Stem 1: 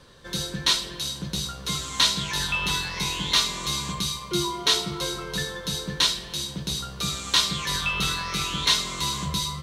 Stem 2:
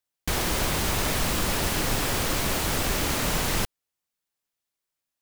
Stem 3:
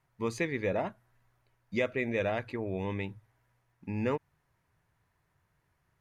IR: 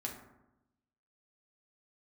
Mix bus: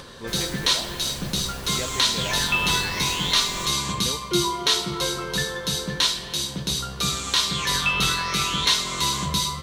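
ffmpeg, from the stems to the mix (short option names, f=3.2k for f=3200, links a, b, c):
-filter_complex "[0:a]lowshelf=f=140:g=-4.5,acompressor=mode=upward:threshold=-40dB:ratio=2.5,volume=2.5dB,asplit=2[a][b];[b]volume=-9dB[c];[1:a]asplit=2[d][e];[e]adelay=7.6,afreqshift=0.57[f];[d][f]amix=inputs=2:normalize=1,volume=-11.5dB,asplit=2[g][h];[h]volume=-8.5dB[i];[2:a]volume=-4.5dB[j];[3:a]atrim=start_sample=2205[k];[c][i]amix=inputs=2:normalize=0[l];[l][k]afir=irnorm=-1:irlink=0[m];[a][g][j][m]amix=inputs=4:normalize=0,alimiter=limit=-6.5dB:level=0:latency=1:release=267"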